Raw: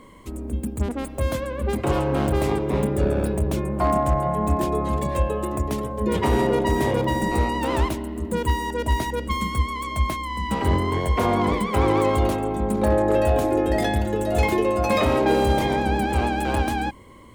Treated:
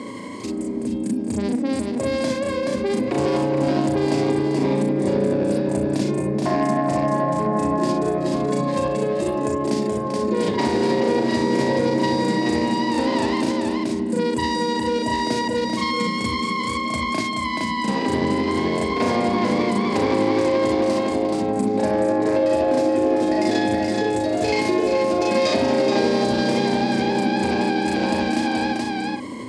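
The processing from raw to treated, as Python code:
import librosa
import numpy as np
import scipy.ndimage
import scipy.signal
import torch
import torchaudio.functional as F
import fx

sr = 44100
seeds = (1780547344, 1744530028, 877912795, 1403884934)

p1 = fx.self_delay(x, sr, depth_ms=0.11)
p2 = fx.stretch_grains(p1, sr, factor=1.7, grain_ms=172.0)
p3 = fx.cabinet(p2, sr, low_hz=130.0, low_slope=24, high_hz=9000.0, hz=(160.0, 260.0, 760.0, 1300.0, 3000.0, 4800.0), db=(-6, 6, -3, -10, -4, 8))
p4 = p3 + fx.echo_single(p3, sr, ms=427, db=-5.5, dry=0)
y = fx.env_flatten(p4, sr, amount_pct=50)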